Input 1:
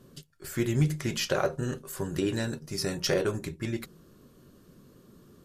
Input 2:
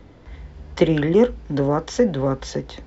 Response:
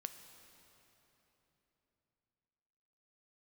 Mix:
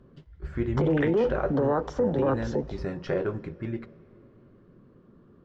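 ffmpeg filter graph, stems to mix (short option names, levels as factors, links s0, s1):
-filter_complex "[0:a]lowpass=1700,volume=0.708,asplit=3[s0][s1][s2];[s1]volume=0.531[s3];[1:a]afwtdn=0.0398,alimiter=limit=0.237:level=0:latency=1:release=37,acrossover=split=350|3000[s4][s5][s6];[s4]acompressor=threshold=0.0251:ratio=6[s7];[s7][s5][s6]amix=inputs=3:normalize=0,volume=1.26,asplit=2[s8][s9];[s9]volume=0.282[s10];[s2]apad=whole_len=126454[s11];[s8][s11]sidechaingate=range=0.0224:threshold=0.00282:ratio=16:detection=peak[s12];[2:a]atrim=start_sample=2205[s13];[s3][s10]amix=inputs=2:normalize=0[s14];[s14][s13]afir=irnorm=-1:irlink=0[s15];[s0][s12][s15]amix=inputs=3:normalize=0,highshelf=f=11000:g=-11.5,alimiter=limit=0.15:level=0:latency=1:release=14"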